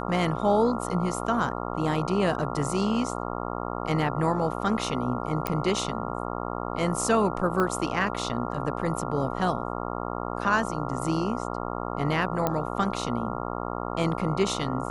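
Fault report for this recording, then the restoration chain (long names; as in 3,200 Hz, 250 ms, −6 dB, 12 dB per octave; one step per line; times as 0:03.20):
mains buzz 60 Hz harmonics 23 −32 dBFS
0:05.47: click −11 dBFS
0:07.60: click −14 dBFS
0:12.47: click −11 dBFS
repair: click removal
hum removal 60 Hz, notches 23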